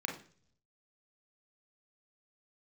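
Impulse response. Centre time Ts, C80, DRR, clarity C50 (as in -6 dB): 23 ms, 13.5 dB, 0.5 dB, 8.0 dB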